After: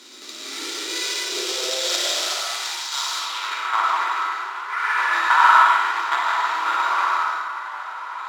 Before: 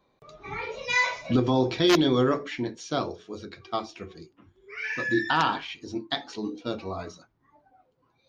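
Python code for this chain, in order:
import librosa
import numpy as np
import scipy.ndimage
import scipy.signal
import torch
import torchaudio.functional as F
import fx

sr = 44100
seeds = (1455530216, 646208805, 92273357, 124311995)

p1 = fx.bin_compress(x, sr, power=0.4)
p2 = fx.mod_noise(p1, sr, seeds[0], snr_db=12)
p3 = fx.high_shelf(p2, sr, hz=4900.0, db=9.0)
p4 = fx.small_body(p3, sr, hz=(350.0, 1400.0, 3800.0), ring_ms=25, db=10)
p5 = p4 + fx.room_flutter(p4, sr, wall_m=9.5, rt60_s=0.56, dry=0)
p6 = fx.rev_freeverb(p5, sr, rt60_s=1.2, hf_ratio=0.95, predelay_ms=65, drr_db=-1.5)
p7 = np.repeat(p6[::4], 4)[:len(p6)]
p8 = fx.filter_sweep_bandpass(p7, sr, from_hz=5000.0, to_hz=1500.0, start_s=3.15, end_s=3.78, q=1.3)
p9 = scipy.signal.sosfilt(scipy.signal.butter(2, 130.0, 'highpass', fs=sr, output='sos'), p8)
p10 = fx.filter_sweep_highpass(p9, sr, from_hz=240.0, to_hz=970.0, start_s=0.36, end_s=3.0, q=5.9)
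y = p10 * 10.0 ** (-5.5 / 20.0)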